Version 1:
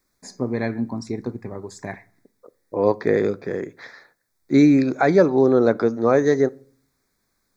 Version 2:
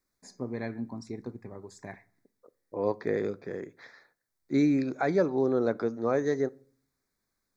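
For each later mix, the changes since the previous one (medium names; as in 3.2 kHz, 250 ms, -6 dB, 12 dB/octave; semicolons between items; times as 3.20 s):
first voice -10.5 dB; second voice -10.0 dB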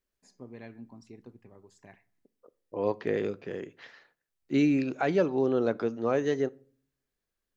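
first voice -10.5 dB; master: remove Butterworth band-stop 2.9 kHz, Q 2.2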